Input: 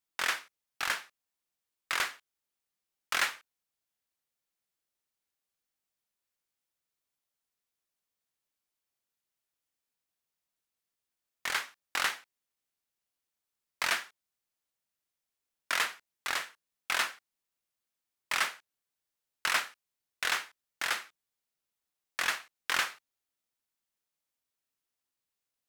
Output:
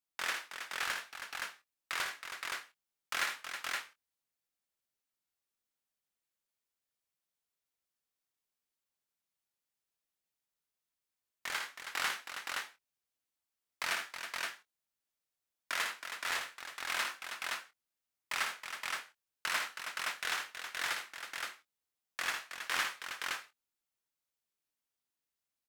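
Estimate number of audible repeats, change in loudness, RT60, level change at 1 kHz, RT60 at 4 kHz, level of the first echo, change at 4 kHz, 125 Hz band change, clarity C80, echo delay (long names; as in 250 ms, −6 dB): 3, −5.0 dB, no reverb audible, −3.0 dB, no reverb audible, −6.5 dB, −3.0 dB, can't be measured, no reverb audible, 58 ms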